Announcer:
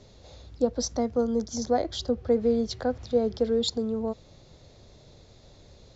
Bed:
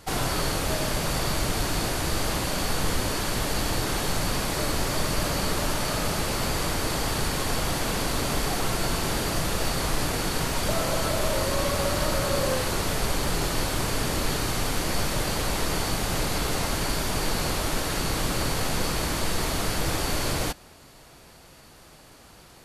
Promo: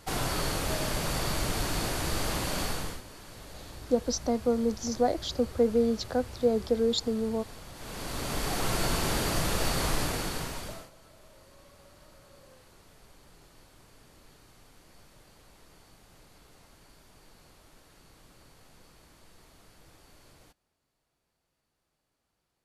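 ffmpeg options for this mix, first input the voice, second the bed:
ffmpeg -i stem1.wav -i stem2.wav -filter_complex "[0:a]adelay=3300,volume=-1dB[link_01];[1:a]volume=14.5dB,afade=type=out:start_time=2.62:duration=0.4:silence=0.149624,afade=type=in:start_time=7.74:duration=1.04:silence=0.11885,afade=type=out:start_time=9.88:duration=1.02:silence=0.0375837[link_02];[link_01][link_02]amix=inputs=2:normalize=0" out.wav

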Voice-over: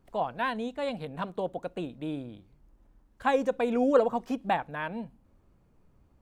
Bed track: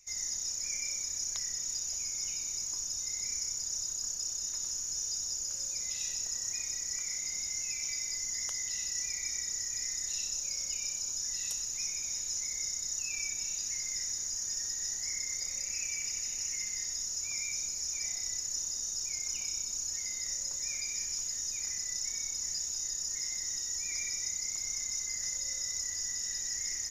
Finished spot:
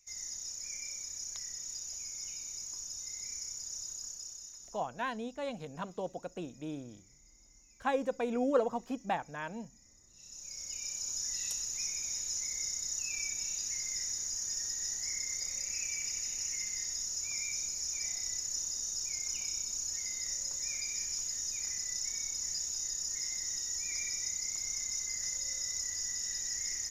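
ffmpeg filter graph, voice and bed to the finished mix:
ffmpeg -i stem1.wav -i stem2.wav -filter_complex "[0:a]adelay=4600,volume=-6dB[link_01];[1:a]volume=20.5dB,afade=type=out:start_time=3.94:duration=0.96:silence=0.0841395,afade=type=in:start_time=10.14:duration=1.02:silence=0.0473151[link_02];[link_01][link_02]amix=inputs=2:normalize=0" out.wav

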